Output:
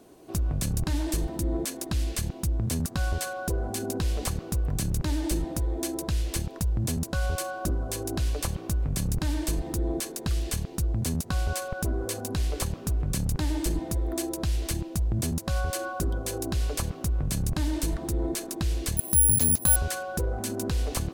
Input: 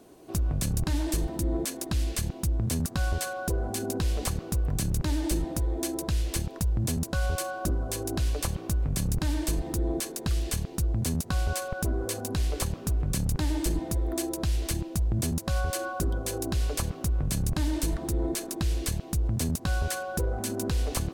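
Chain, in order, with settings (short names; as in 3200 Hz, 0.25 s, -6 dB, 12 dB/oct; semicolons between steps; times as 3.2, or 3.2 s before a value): 18.97–19.76 careless resampling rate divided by 4×, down filtered, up zero stuff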